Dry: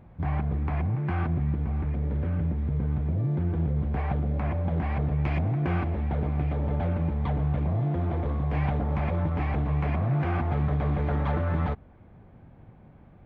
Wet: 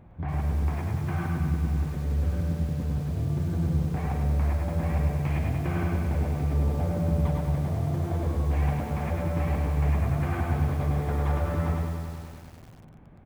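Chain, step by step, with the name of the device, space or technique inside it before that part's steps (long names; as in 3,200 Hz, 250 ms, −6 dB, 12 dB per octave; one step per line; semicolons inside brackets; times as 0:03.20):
0:06.41–0:07.22: tilt shelving filter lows +3.5 dB, about 940 Hz
repeating echo 110 ms, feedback 34%, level −5 dB
parallel compression (in parallel at −3 dB: downward compressor 16 to 1, threshold −35 dBFS, peak gain reduction 19 dB)
on the sum: feedback echo at a low word length 98 ms, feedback 80%, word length 7 bits, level −7 dB
level −5 dB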